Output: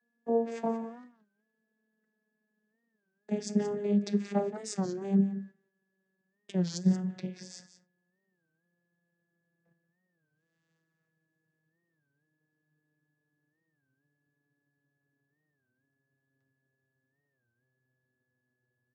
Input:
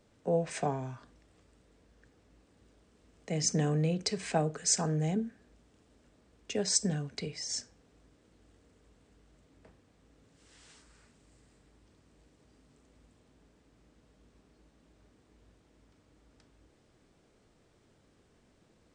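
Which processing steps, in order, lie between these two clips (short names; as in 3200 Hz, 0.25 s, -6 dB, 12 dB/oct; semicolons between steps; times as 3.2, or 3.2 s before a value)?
vocoder on a gliding note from A#3, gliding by -11 st; whine 1700 Hz -66 dBFS; gate -57 dBFS, range -17 dB; on a send: echo 0.178 s -13 dB; on the sum: record warp 33 1/3 rpm, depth 160 cents; gain +2 dB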